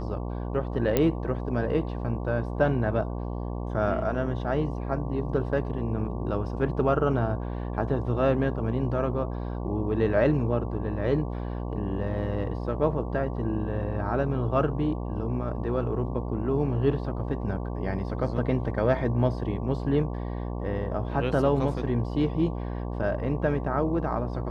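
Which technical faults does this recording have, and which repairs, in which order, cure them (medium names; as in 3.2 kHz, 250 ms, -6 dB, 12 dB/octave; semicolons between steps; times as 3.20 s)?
buzz 60 Hz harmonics 19 -32 dBFS
0.97 s: pop -9 dBFS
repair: de-click; de-hum 60 Hz, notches 19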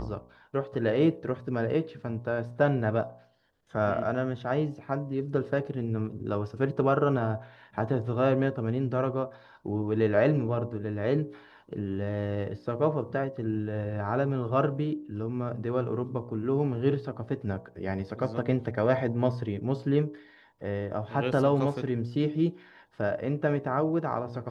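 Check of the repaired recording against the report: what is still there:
nothing left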